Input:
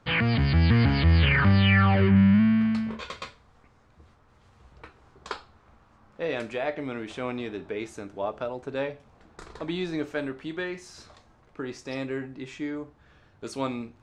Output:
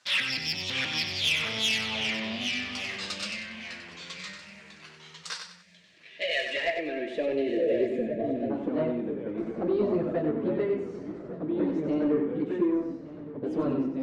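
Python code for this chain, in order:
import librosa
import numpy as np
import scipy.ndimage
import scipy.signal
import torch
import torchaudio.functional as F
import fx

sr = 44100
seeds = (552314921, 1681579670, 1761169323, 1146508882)

p1 = fx.pitch_heads(x, sr, semitones=2.0)
p2 = fx.env_flanger(p1, sr, rest_ms=8.2, full_db=-20.0)
p3 = fx.fold_sine(p2, sr, drive_db=7, ceiling_db=-11.0)
p4 = p2 + F.gain(torch.from_numpy(p3), -4.5).numpy()
p5 = fx.echo_pitch(p4, sr, ms=618, semitones=-2, count=3, db_per_echo=-6.0)
p6 = fx.filter_sweep_bandpass(p5, sr, from_hz=6000.0, to_hz=220.0, start_s=5.6, end_s=8.13, q=1.1)
p7 = 10.0 ** (-22.0 / 20.0) * np.tanh(p6 / 10.0 ** (-22.0 / 20.0))
p8 = fx.echo_feedback(p7, sr, ms=95, feedback_pct=33, wet_db=-7.0)
p9 = fx.spec_box(p8, sr, start_s=5.63, length_s=2.87, low_hz=700.0, high_hz=1600.0, gain_db=-20)
p10 = p9 + 10.0 ** (-17.5 / 20.0) * np.pad(p9, (int(1165 * sr / 1000.0), 0))[:len(p9)]
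y = F.gain(torch.from_numpy(p10), 4.0).numpy()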